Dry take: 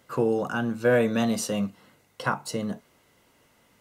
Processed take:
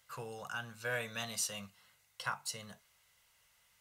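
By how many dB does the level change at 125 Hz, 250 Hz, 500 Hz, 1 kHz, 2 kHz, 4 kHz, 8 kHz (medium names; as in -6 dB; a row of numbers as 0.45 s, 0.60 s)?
-16.5 dB, -26.0 dB, -20.5 dB, -12.0 dB, -8.0 dB, -4.5 dB, -3.0 dB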